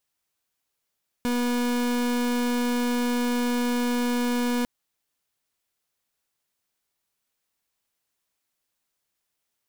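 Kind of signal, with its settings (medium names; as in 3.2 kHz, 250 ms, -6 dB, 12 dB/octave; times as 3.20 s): pulse 243 Hz, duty 37% -24.5 dBFS 3.40 s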